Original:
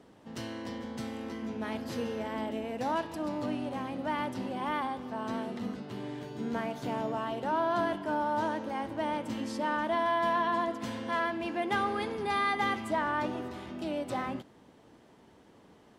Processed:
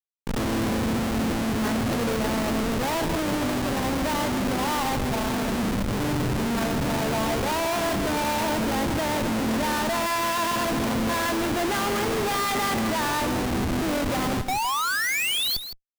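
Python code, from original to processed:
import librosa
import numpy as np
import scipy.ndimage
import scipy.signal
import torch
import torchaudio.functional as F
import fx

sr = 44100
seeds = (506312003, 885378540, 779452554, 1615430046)

y = fx.spec_paint(x, sr, seeds[0], shape='rise', start_s=14.48, length_s=1.09, low_hz=720.0, high_hz=4600.0, level_db=-35.0)
y = fx.schmitt(y, sr, flips_db=-39.5)
y = y + 10.0 ** (-10.5 / 20.0) * np.pad(y, (int(162 * sr / 1000.0), 0))[:len(y)]
y = y * librosa.db_to_amplitude(8.0)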